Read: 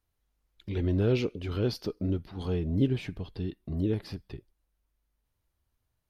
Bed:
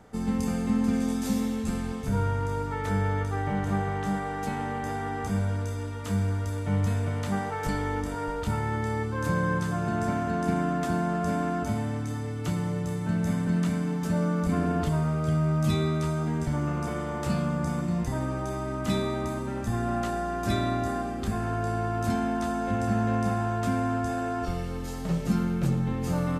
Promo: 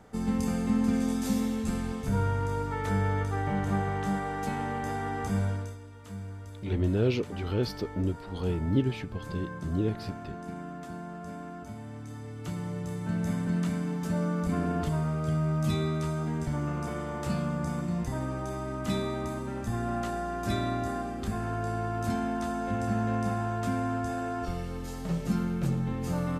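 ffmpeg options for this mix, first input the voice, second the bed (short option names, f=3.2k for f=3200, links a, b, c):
-filter_complex "[0:a]adelay=5950,volume=0dB[a];[1:a]volume=9dB,afade=t=out:st=5.46:d=0.33:silence=0.251189,afade=t=in:st=11.77:d=1.45:silence=0.316228[b];[a][b]amix=inputs=2:normalize=0"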